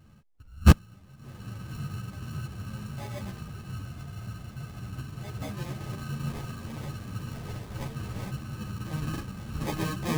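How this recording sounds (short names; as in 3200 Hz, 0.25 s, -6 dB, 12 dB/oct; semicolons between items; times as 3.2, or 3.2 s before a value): aliases and images of a low sample rate 1400 Hz, jitter 0%; a shimmering, thickened sound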